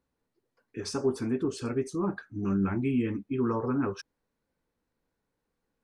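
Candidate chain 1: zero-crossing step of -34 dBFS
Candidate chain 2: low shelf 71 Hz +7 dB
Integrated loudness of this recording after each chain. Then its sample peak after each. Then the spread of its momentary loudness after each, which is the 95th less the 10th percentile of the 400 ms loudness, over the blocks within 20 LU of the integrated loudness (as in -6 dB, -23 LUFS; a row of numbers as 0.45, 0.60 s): -29.0, -30.0 LUFS; -15.5, -16.0 dBFS; 14, 7 LU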